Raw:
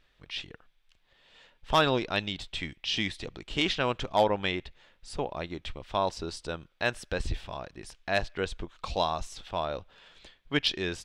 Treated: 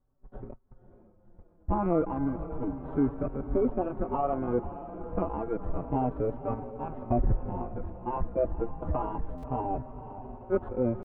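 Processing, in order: FFT order left unsorted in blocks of 32 samples; rotary speaker horn 0.85 Hz; limiter -21.5 dBFS, peak gain reduction 11 dB; bell 220 Hz +6 dB 0.57 oct; sample leveller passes 1; added noise brown -46 dBFS; gate -40 dBFS, range -29 dB; diffused feedback echo 0.532 s, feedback 65%, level -12 dB; pitch shift +5 st; inverse Chebyshev low-pass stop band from 5600 Hz, stop band 70 dB; stuck buffer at 9.37, samples 512, times 4; endless flanger 4.8 ms -0.3 Hz; gain +8 dB

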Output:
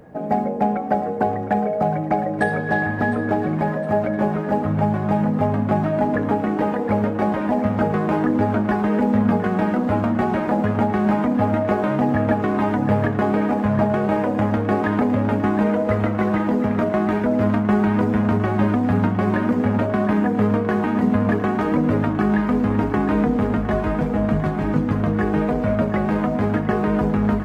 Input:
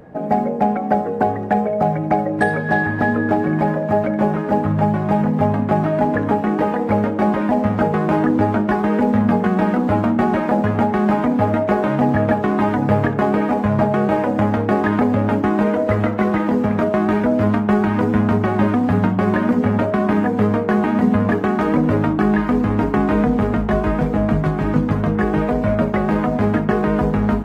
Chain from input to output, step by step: bit-crush 12-bit; on a send: split-band echo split 640 Hz, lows 0.125 s, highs 0.71 s, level -12.5 dB; on the sum: gain -3 dB

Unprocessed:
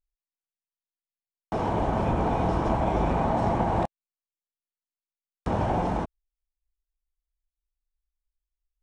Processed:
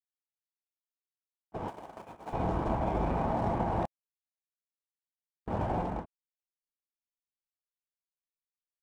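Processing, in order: Wiener smoothing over 9 samples; 1.68–2.33 RIAA curve recording; gate -26 dBFS, range -32 dB; gain -5.5 dB

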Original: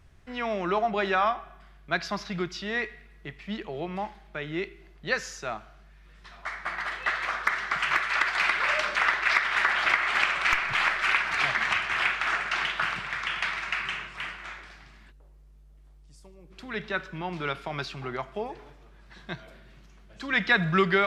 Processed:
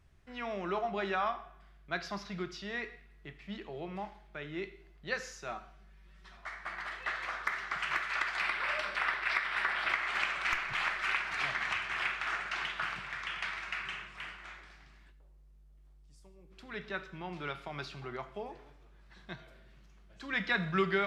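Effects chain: 5.48–6.37 comb 5.3 ms, depth 67%; 8.4–9.92 bell 6600 Hz -10 dB 0.29 oct; non-linear reverb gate 0.2 s falling, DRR 10 dB; gain -8.5 dB

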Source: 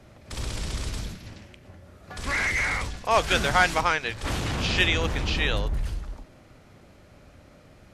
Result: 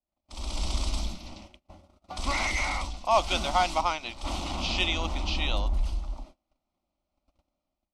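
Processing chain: gate -46 dBFS, range -31 dB; bell 180 Hz -6.5 dB 2.2 oct; notch 6900 Hz, Q 17; AGC gain up to 12.5 dB; air absorption 62 m; fixed phaser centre 450 Hz, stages 6; gain -5.5 dB

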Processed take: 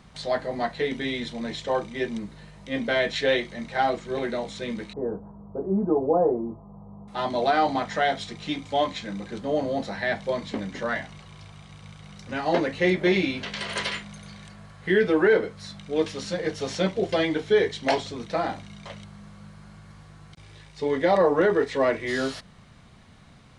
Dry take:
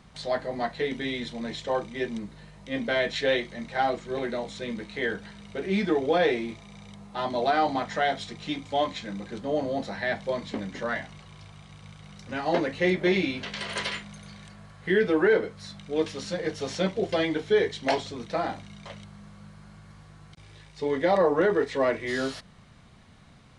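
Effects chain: 4.93–7.08 steep low-pass 1100 Hz 48 dB/oct; gain +2 dB

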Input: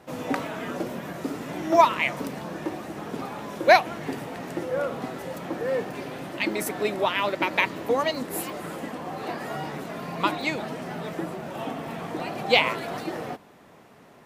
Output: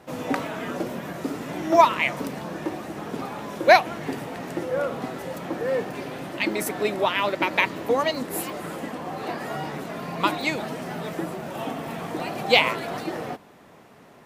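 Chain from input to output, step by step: 10.23–12.71 high shelf 6900 Hz +5 dB; gain +1.5 dB

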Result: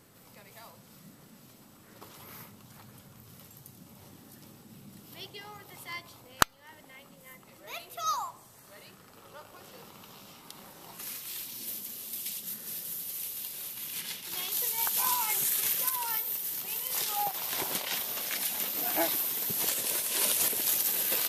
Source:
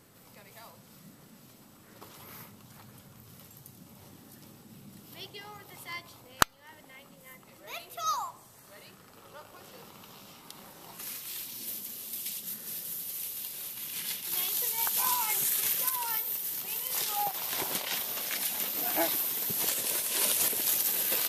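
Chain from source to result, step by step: 14.01–14.52 high shelf 9100 Hz -8 dB

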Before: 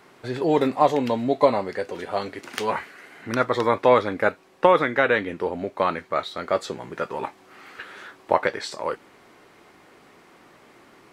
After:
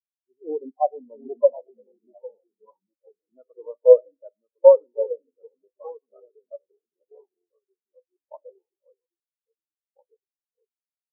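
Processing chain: median filter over 25 samples; HPF 340 Hz 6 dB/oct; in parallel at -12 dB: wavefolder -21 dBFS; on the sum: envelope phaser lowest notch 470 Hz, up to 4600 Hz, full sweep at -20.5 dBFS; echoes that change speed 0.63 s, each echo -2 st, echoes 3, each echo -6 dB; on a send at -11.5 dB: reverb RT60 1.1 s, pre-delay 13 ms; on the sum: spectral expander 4:1; gain +2.5 dB

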